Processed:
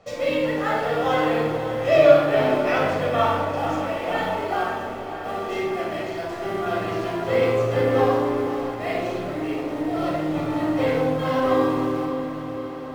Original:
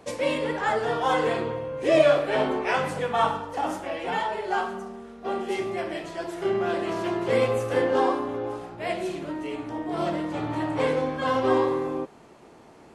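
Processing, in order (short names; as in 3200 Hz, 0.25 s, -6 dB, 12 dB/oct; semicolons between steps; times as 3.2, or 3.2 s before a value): LPF 6600 Hz 24 dB/oct; de-hum 63.8 Hz, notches 17; in parallel at -12 dB: bit-crush 6-bit; on the sum: diffused feedback echo 0.544 s, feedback 65%, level -10.5 dB; shoebox room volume 4000 m³, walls furnished, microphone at 6.5 m; gain -5 dB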